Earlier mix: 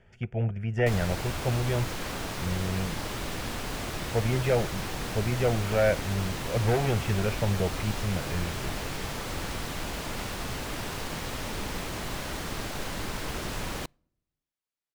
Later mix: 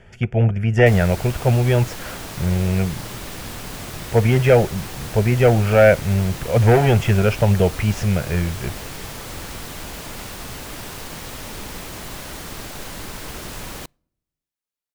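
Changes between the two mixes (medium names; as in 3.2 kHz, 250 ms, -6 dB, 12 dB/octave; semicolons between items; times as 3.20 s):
speech +11.5 dB; master: add treble shelf 7.5 kHz +8.5 dB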